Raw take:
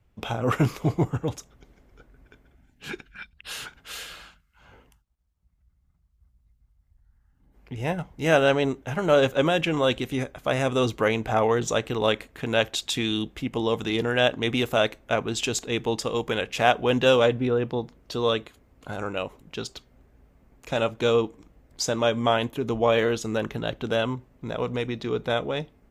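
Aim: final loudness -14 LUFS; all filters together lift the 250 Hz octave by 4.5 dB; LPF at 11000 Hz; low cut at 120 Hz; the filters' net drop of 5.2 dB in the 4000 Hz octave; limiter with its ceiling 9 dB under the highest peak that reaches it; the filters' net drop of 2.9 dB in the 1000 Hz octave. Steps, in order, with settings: HPF 120 Hz; LPF 11000 Hz; bell 250 Hz +6 dB; bell 1000 Hz -4.5 dB; bell 4000 Hz -6.5 dB; gain +13 dB; limiter -1.5 dBFS

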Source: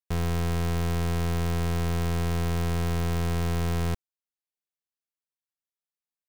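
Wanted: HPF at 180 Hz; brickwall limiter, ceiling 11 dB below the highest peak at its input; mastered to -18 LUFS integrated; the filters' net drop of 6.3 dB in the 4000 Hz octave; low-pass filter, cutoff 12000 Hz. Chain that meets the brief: HPF 180 Hz; LPF 12000 Hz; bell 4000 Hz -8.5 dB; gain +26 dB; limiter -6 dBFS

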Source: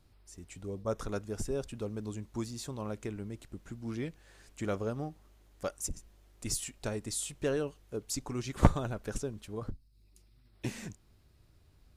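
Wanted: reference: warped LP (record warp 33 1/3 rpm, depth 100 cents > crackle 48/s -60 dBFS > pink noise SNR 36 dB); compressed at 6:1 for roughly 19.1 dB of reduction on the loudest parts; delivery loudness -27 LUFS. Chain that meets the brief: compressor 6:1, threshold -36 dBFS; record warp 33 1/3 rpm, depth 100 cents; crackle 48/s -60 dBFS; pink noise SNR 36 dB; gain +15.5 dB

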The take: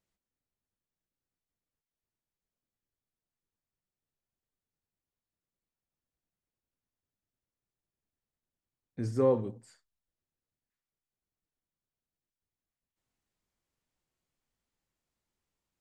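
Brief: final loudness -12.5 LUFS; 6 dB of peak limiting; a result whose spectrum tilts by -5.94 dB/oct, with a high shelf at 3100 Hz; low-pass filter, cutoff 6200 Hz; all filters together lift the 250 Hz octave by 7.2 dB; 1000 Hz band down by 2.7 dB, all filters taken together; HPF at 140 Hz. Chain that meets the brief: HPF 140 Hz; LPF 6200 Hz; bell 250 Hz +8.5 dB; bell 1000 Hz -3 dB; high shelf 3100 Hz -6 dB; gain +18 dB; limiter 0 dBFS

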